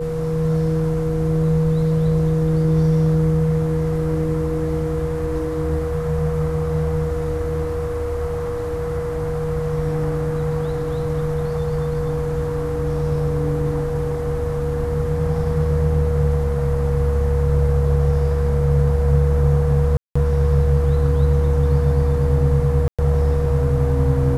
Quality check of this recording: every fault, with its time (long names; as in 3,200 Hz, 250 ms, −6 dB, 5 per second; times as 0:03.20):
whistle 480 Hz −23 dBFS
0:19.97–0:20.16: drop-out 185 ms
0:22.88–0:22.99: drop-out 106 ms